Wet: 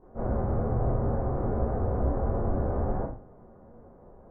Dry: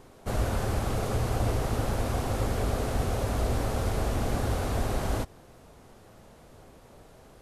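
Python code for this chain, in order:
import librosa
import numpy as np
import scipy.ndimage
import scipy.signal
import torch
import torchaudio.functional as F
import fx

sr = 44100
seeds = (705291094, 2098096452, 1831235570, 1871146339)

y = scipy.ndimage.gaussian_filter1d(x, 7.8, mode='constant')
y = fx.hum_notches(y, sr, base_hz=50, count=5)
y = fx.rev_schroeder(y, sr, rt60_s=0.67, comb_ms=31, drr_db=-10.0)
y = fx.stretch_vocoder(y, sr, factor=0.58)
y = F.gain(torch.from_numpy(y), -5.5).numpy()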